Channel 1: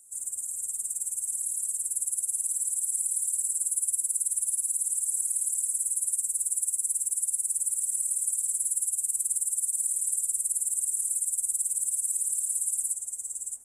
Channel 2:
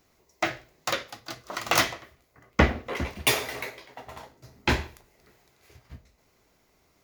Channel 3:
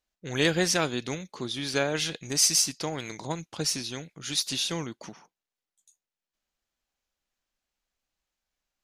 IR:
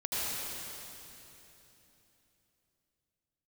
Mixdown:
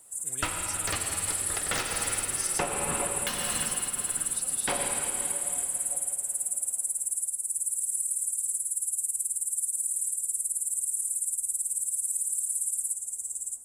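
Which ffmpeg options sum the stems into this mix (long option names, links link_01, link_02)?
-filter_complex "[0:a]equalizer=frequency=3100:width=0.98:gain=-7.5,volume=1dB,asplit=2[link_01][link_02];[link_02]volume=-22.5dB[link_03];[1:a]aeval=exprs='val(0)*sin(2*PI*640*n/s)':channel_layout=same,volume=-1.5dB,asplit=2[link_04][link_05];[link_05]volume=-7.5dB[link_06];[2:a]acrossover=split=160|3000[link_07][link_08][link_09];[link_08]acompressor=threshold=-31dB:ratio=6[link_10];[link_07][link_10][link_09]amix=inputs=3:normalize=0,volume=-16dB[link_11];[3:a]atrim=start_sample=2205[link_12];[link_03][link_06]amix=inputs=2:normalize=0[link_13];[link_13][link_12]afir=irnorm=-1:irlink=0[link_14];[link_01][link_04][link_11][link_14]amix=inputs=4:normalize=0,alimiter=limit=-15.5dB:level=0:latency=1:release=396"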